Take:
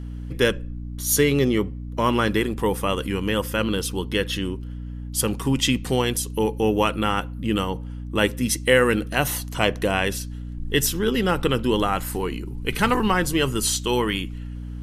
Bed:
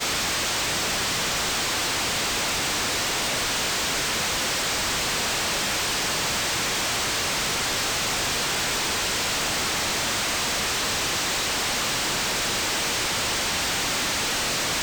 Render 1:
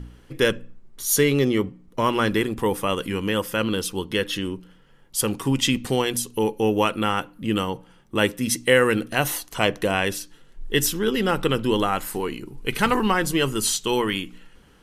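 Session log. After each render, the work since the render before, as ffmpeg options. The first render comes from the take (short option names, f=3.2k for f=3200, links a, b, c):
-af "bandreject=f=60:t=h:w=4,bandreject=f=120:t=h:w=4,bandreject=f=180:t=h:w=4,bandreject=f=240:t=h:w=4,bandreject=f=300:t=h:w=4"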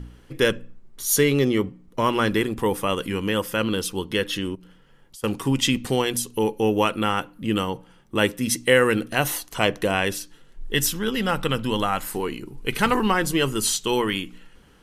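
-filter_complex "[0:a]asettb=1/sr,asplit=3[a][b][c];[a]atrim=end=4.554[d];[b]atrim=start=4.55:end=5.24,asetpts=PTS-STARTPTS,afade=t=in:d=0.004:c=qsin,afade=t=out:st=0.686:d=0.004:c=qsin,acompressor=threshold=-42dB:ratio=6:attack=3.2:release=140:knee=1:detection=peak[e];[c]atrim=start=5.236[f];[d][e]acrossfade=d=0.004:c1=hsin:c2=qsin[g];[g][f]acrossfade=d=0.004:c1=qsin:c2=hsin,asettb=1/sr,asplit=3[h][i][j];[h]atrim=end=10.744[k];[i]atrim=start=10.74:end=12.03,asetpts=PTS-STARTPTS,afade=t=in:d=0.004:c=qsin,afade=t=out:st=1.286:d=0.004:c=qsin,equalizer=f=370:w=2.8:g=-9[l];[j]atrim=start=12.026[m];[k][l]acrossfade=d=0.004:c1=hsin:c2=qsin[n];[n][m]acrossfade=d=0.004:c1=qsin:c2=hsin"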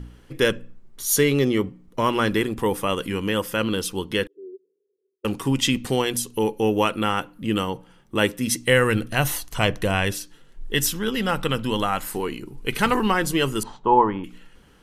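-filter_complex "[0:a]asettb=1/sr,asplit=3[a][b][c];[a]atrim=end=4.274[d];[b]atrim=start=4.27:end=5.25,asetpts=PTS-STARTPTS,afade=t=in:d=0.004:c=qsin,afade=t=out:st=0.976:d=0.004:c=qsin,asuperpass=centerf=400:order=4:qfactor=7.7[e];[c]atrim=start=5.246[f];[d][e]acrossfade=d=0.004:c1=hsin:c2=qsin[g];[g][f]acrossfade=d=0.004:c1=qsin:c2=hsin,asplit=3[h][i][j];[h]afade=t=out:st=8.65:d=0.02[k];[i]asubboost=boost=3:cutoff=150,afade=t=in:st=8.65:d=0.02,afade=t=out:st=10.1:d=0.02[l];[j]afade=t=in:st=10.1:d=0.02[m];[k][l][m]amix=inputs=3:normalize=0,asettb=1/sr,asplit=3[n][o][p];[n]atrim=end=13.634[q];[o]atrim=start=13.63:end=14.24,asetpts=PTS-STARTPTS,afade=t=in:d=0.004:c=qsin,afade=t=out:st=0.606:d=0.004:c=qsin,lowpass=f=910:t=q:w=5.2[r];[p]atrim=start=14.236[s];[q][r]acrossfade=d=0.004:c1=hsin:c2=qsin[t];[t][s]acrossfade=d=0.004:c1=qsin:c2=hsin"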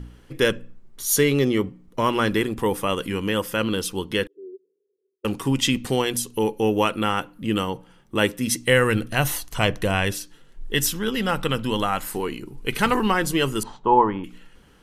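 -af anull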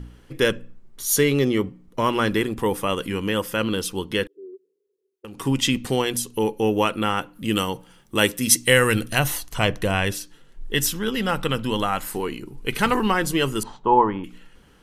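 -filter_complex "[0:a]asplit=3[a][b][c];[a]afade=t=out:st=4.45:d=0.02[d];[b]acompressor=threshold=-36dB:ratio=6:attack=3.2:release=140:knee=1:detection=peak,afade=t=in:st=4.45:d=0.02,afade=t=out:st=5.38:d=0.02[e];[c]afade=t=in:st=5.38:d=0.02[f];[d][e][f]amix=inputs=3:normalize=0,asplit=3[g][h][i];[g]afade=t=out:st=7.34:d=0.02[j];[h]highshelf=f=3.5k:g=10,afade=t=in:st=7.34:d=0.02,afade=t=out:st=9.18:d=0.02[k];[i]afade=t=in:st=9.18:d=0.02[l];[j][k][l]amix=inputs=3:normalize=0"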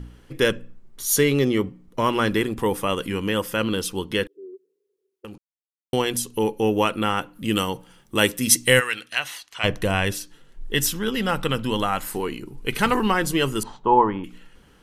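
-filter_complex "[0:a]asplit=3[a][b][c];[a]afade=t=out:st=8.79:d=0.02[d];[b]bandpass=f=2.6k:t=q:w=0.94,afade=t=in:st=8.79:d=0.02,afade=t=out:st=9.63:d=0.02[e];[c]afade=t=in:st=9.63:d=0.02[f];[d][e][f]amix=inputs=3:normalize=0,asplit=3[g][h][i];[g]atrim=end=5.38,asetpts=PTS-STARTPTS,afade=t=out:st=5.376:d=0.004:c=hsin[j];[h]atrim=start=5.38:end=5.93,asetpts=PTS-STARTPTS,volume=0[k];[i]atrim=start=5.93,asetpts=PTS-STARTPTS,afade=t=in:d=0.004:c=hsin[l];[j][k][l]concat=n=3:v=0:a=1"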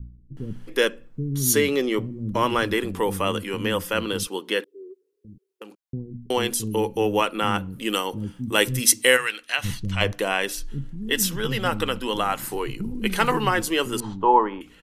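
-filter_complex "[0:a]acrossover=split=240[a][b];[b]adelay=370[c];[a][c]amix=inputs=2:normalize=0"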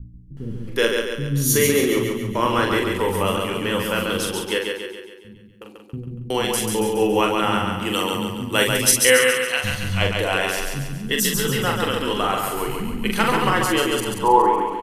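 -filter_complex "[0:a]asplit=2[a][b];[b]adelay=43,volume=-4dB[c];[a][c]amix=inputs=2:normalize=0,asplit=2[d][e];[e]aecho=0:1:139|278|417|556|695|834|973:0.631|0.322|0.164|0.0837|0.0427|0.0218|0.0111[f];[d][f]amix=inputs=2:normalize=0"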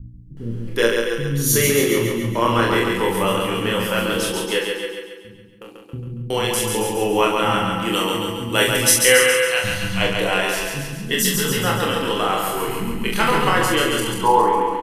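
-filter_complex "[0:a]asplit=2[a][b];[b]adelay=26,volume=-3.5dB[c];[a][c]amix=inputs=2:normalize=0,aecho=1:1:272:0.282"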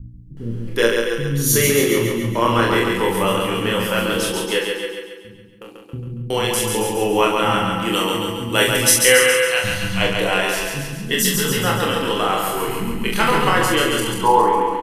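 -af "volume=1dB,alimiter=limit=-1dB:level=0:latency=1"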